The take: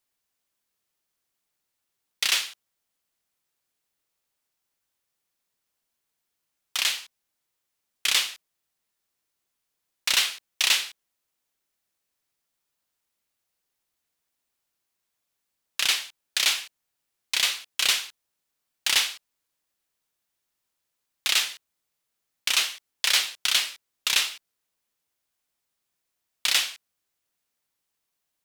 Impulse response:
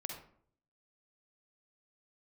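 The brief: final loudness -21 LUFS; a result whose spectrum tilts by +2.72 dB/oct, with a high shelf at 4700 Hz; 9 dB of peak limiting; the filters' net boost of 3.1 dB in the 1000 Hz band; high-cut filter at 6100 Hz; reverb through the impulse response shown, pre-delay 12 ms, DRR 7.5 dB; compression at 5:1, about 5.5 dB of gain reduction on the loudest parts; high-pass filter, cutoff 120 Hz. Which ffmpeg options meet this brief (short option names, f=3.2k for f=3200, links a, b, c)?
-filter_complex "[0:a]highpass=120,lowpass=6.1k,equalizer=f=1k:t=o:g=4.5,highshelf=f=4.7k:g=-7.5,acompressor=threshold=-26dB:ratio=5,alimiter=limit=-21dB:level=0:latency=1,asplit=2[a][b];[1:a]atrim=start_sample=2205,adelay=12[c];[b][c]afir=irnorm=-1:irlink=0,volume=-6.5dB[d];[a][d]amix=inputs=2:normalize=0,volume=13.5dB"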